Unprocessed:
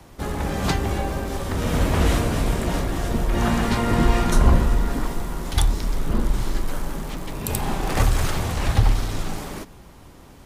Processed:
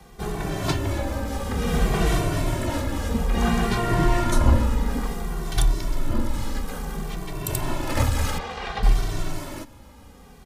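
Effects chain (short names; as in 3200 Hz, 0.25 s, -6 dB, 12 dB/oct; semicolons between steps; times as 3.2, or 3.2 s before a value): 8.38–8.83 three-band isolator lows -15 dB, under 350 Hz, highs -24 dB, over 5100 Hz; endless flanger 2.1 ms -0.58 Hz; gain +1.5 dB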